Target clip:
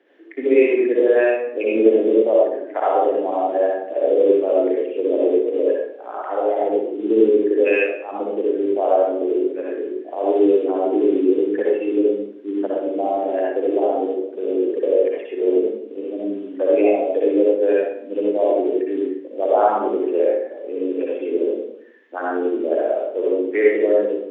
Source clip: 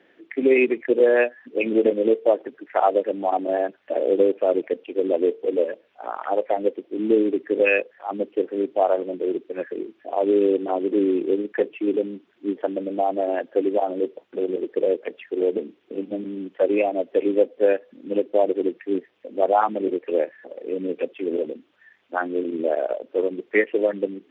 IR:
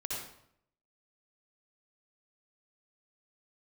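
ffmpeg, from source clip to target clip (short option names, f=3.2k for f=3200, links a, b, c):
-filter_complex "[0:a]highpass=f=290:w=0.5412,highpass=f=290:w=1.3066,lowshelf=f=500:g=9[a];[1:a]atrim=start_sample=2205[b];[a][b]afir=irnorm=-1:irlink=0,volume=-3dB"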